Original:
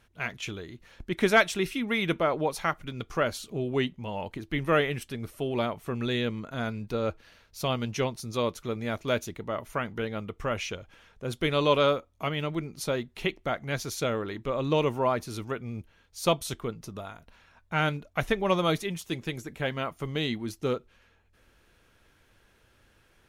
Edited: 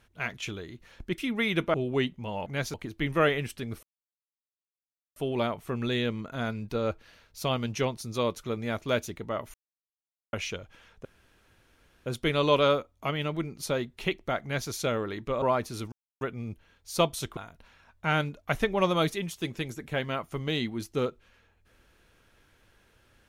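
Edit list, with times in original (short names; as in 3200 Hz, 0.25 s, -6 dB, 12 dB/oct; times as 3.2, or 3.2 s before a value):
1.18–1.7 cut
2.26–3.54 cut
5.35 insert silence 1.33 s
9.73–10.52 mute
11.24 insert room tone 1.01 s
13.6–13.88 copy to 4.26
14.6–14.99 cut
15.49 insert silence 0.29 s
16.65–17.05 cut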